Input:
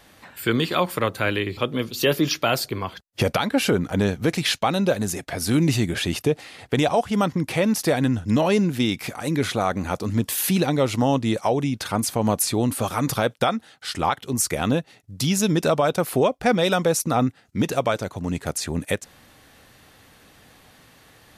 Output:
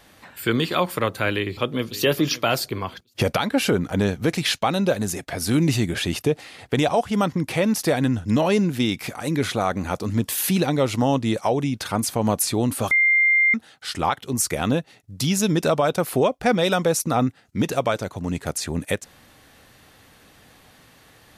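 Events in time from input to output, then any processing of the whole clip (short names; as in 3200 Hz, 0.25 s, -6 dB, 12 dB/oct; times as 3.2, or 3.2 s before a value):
1.34–1.99 echo throw 0.57 s, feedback 20%, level -17 dB
12.91–13.54 bleep 2100 Hz -14 dBFS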